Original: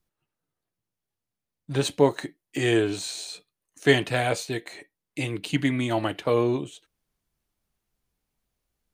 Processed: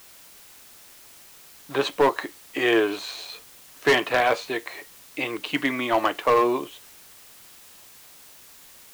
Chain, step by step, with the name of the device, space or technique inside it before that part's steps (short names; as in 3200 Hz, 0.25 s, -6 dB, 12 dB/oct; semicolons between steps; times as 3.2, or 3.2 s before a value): drive-through speaker (BPF 410–3200 Hz; bell 1100 Hz +9 dB 0.35 oct; hard clip -18.5 dBFS, distortion -11 dB; white noise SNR 22 dB); gain +5.5 dB